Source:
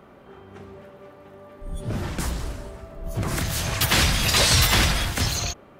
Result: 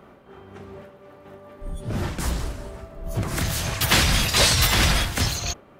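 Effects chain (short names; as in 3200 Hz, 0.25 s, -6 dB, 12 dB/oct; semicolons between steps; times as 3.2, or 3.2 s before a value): noise-modulated level, depth 60%; gain +3.5 dB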